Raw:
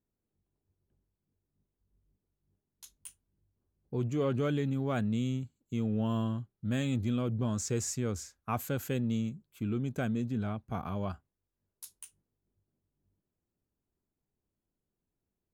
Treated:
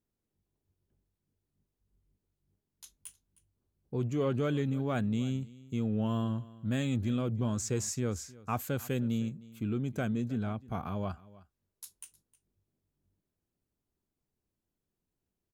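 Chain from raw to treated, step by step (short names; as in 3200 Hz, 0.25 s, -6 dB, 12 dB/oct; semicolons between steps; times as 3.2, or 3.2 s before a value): wow and flutter 23 cents; on a send: echo 0.311 s -20.5 dB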